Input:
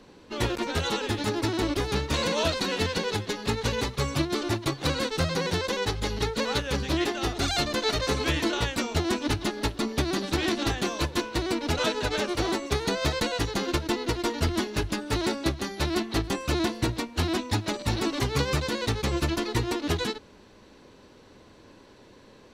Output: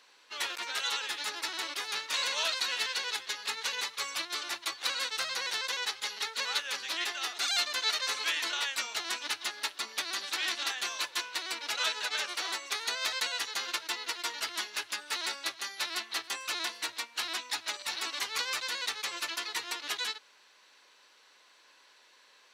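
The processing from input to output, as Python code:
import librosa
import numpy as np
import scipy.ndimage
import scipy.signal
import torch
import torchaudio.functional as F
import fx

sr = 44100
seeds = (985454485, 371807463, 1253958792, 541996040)

y = scipy.signal.sosfilt(scipy.signal.butter(2, 1400.0, 'highpass', fs=sr, output='sos'), x)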